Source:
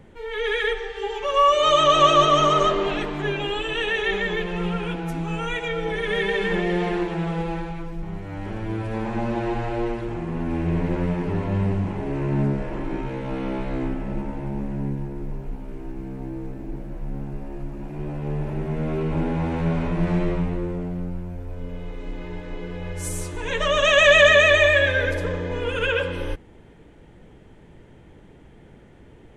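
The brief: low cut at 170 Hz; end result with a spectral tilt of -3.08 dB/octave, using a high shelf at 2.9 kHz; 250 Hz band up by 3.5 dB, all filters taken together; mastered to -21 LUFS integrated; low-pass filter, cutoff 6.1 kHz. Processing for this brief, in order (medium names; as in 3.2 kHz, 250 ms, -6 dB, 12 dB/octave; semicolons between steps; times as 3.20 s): high-pass 170 Hz; low-pass 6.1 kHz; peaking EQ 250 Hz +7 dB; treble shelf 2.9 kHz +3.5 dB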